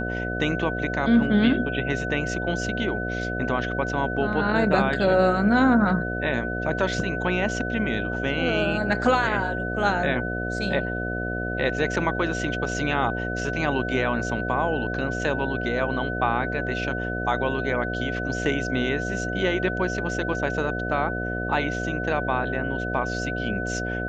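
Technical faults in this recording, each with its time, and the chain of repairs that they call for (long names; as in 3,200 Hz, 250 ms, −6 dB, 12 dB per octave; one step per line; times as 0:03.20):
mains buzz 60 Hz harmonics 12 −30 dBFS
whistle 1,500 Hz −30 dBFS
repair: notch filter 1,500 Hz, Q 30
hum removal 60 Hz, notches 12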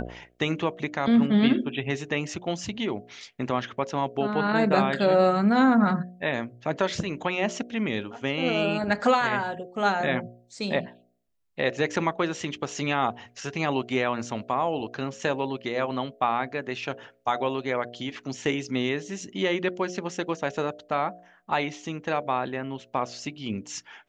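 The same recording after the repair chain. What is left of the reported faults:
none of them is left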